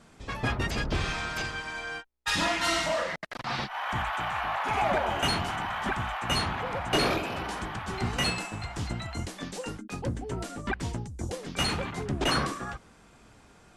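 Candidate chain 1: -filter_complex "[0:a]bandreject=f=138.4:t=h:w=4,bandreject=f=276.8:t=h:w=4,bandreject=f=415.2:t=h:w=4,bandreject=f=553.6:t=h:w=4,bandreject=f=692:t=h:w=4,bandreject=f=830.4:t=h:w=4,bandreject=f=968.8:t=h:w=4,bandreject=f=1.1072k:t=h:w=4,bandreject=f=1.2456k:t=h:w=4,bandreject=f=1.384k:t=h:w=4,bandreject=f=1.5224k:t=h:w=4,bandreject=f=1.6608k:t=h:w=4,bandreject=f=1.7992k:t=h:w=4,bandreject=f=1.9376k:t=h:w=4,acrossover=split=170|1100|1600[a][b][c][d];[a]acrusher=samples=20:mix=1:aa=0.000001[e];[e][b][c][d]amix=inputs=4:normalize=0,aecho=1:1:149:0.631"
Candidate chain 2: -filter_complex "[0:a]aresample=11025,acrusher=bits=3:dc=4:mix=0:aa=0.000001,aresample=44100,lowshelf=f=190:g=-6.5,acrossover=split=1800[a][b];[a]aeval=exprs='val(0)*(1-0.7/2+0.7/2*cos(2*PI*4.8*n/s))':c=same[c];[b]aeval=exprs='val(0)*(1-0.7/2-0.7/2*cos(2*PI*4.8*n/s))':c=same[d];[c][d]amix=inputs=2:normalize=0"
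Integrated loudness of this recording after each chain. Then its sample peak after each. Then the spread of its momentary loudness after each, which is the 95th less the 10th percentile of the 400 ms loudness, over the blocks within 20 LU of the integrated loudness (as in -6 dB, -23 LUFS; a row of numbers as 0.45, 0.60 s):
-29.0, -38.0 LUFS; -11.0, -19.0 dBFS; 10, 9 LU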